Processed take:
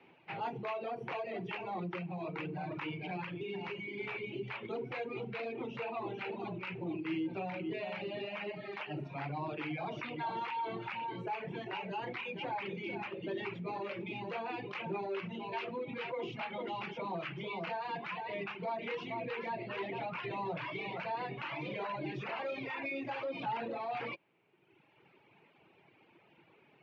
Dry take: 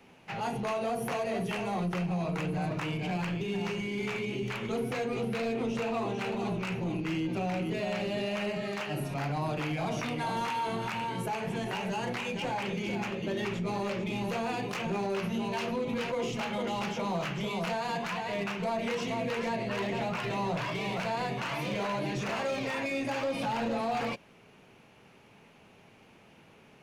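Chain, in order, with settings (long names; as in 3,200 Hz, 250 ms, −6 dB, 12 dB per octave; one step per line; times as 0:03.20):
reverb reduction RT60 1.4 s
loudspeaker in its box 120–3,800 Hz, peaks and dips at 140 Hz +3 dB, 220 Hz −6 dB, 340 Hz +8 dB, 900 Hz +4 dB, 2,300 Hz +5 dB
level −6 dB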